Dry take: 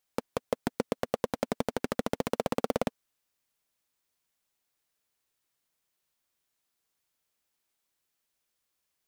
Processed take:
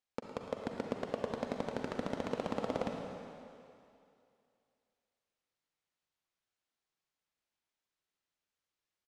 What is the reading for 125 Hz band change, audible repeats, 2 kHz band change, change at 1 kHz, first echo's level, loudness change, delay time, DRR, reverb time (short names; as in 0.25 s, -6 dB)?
-5.0 dB, 1, -6.0 dB, -5.5 dB, -12.0 dB, -6.0 dB, 0.11 s, 1.5 dB, 2.5 s